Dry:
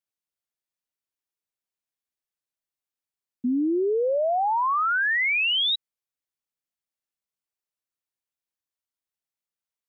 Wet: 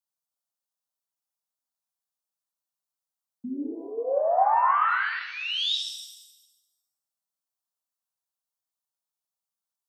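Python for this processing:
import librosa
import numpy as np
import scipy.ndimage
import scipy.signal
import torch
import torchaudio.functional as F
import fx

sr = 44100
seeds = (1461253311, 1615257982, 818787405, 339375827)

y = scipy.signal.sosfilt(scipy.signal.butter(2, 170.0, 'highpass', fs=sr, output='sos'), x)
y = fx.fixed_phaser(y, sr, hz=890.0, stages=4)
y = fx.rev_shimmer(y, sr, seeds[0], rt60_s=1.0, semitones=7, shimmer_db=-8, drr_db=1.5)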